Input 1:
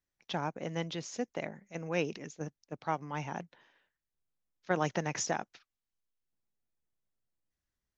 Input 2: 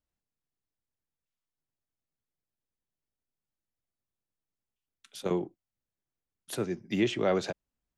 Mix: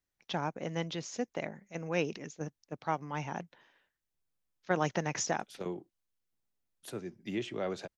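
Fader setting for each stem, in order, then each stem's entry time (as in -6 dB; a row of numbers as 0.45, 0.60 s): +0.5, -8.5 dB; 0.00, 0.35 s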